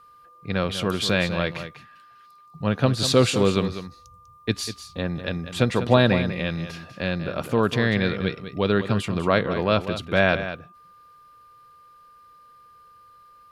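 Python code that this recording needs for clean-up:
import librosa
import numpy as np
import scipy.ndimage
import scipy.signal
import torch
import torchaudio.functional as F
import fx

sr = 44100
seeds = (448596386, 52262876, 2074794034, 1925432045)

y = fx.notch(x, sr, hz=1200.0, q=30.0)
y = fx.fix_echo_inverse(y, sr, delay_ms=196, level_db=-11.0)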